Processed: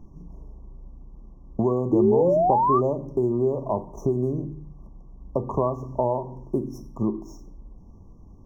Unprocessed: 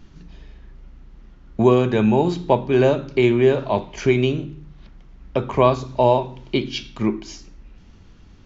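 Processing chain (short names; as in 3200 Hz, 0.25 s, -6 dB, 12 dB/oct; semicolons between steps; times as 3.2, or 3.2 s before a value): median filter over 5 samples; compressor 3:1, threshold -21 dBFS, peak gain reduction 9.5 dB; painted sound rise, 1.92–3.72, 310–5100 Hz -19 dBFS; brick-wall FIR band-stop 1200–5300 Hz; high shelf 2700 Hz -10.5 dB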